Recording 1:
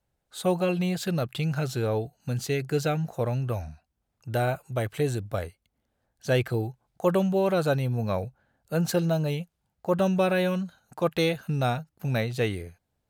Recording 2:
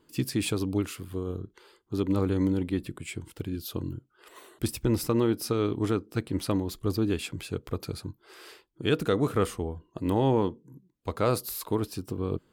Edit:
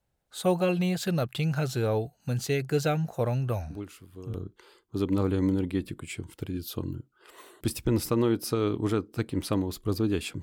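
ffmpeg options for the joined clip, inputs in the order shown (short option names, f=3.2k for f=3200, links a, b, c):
-filter_complex "[1:a]asplit=2[a][b];[0:a]apad=whole_dur=10.42,atrim=end=10.42,atrim=end=4.342[c];[b]atrim=start=1.318:end=7.4[d];[a]atrim=start=0.68:end=1.32,asetpts=PTS-STARTPTS,volume=-10.5dB,afade=t=in:d=0.004:c=hsin,afade=t=out:st=0.636:d=0.004:c=hsin,adelay=3700[e];[c][d]acrossfade=d=0.004:c1=hsin:c2=hsin[f];[f][e]amix=inputs=2:normalize=0"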